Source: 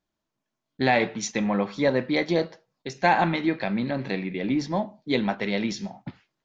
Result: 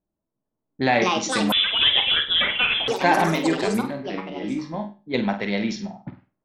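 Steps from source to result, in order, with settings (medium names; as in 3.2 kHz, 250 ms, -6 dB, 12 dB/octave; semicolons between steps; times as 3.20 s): ever faster or slower copies 444 ms, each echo +6 st, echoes 3; 3.81–5.14 s: feedback comb 52 Hz, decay 0.29 s, harmonics all, mix 80%; level-controlled noise filter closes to 690 Hz, open at -21 dBFS; on a send: flutter echo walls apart 8.4 m, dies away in 0.31 s; 1.52–2.88 s: on the sum: frequency inversion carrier 3.7 kHz; trim +1 dB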